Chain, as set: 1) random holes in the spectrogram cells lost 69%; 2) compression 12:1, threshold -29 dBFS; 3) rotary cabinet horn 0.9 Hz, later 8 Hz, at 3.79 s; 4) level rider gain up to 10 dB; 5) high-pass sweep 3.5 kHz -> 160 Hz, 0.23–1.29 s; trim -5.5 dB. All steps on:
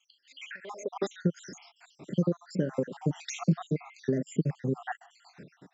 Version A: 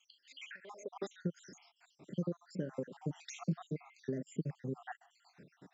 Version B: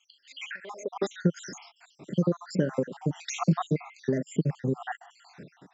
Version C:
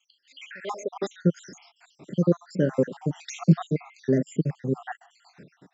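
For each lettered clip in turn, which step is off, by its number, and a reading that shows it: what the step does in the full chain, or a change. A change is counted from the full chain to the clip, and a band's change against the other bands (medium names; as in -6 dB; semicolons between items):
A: 4, momentary loudness spread change +2 LU; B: 3, 1 kHz band +2.5 dB; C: 2, mean gain reduction 2.5 dB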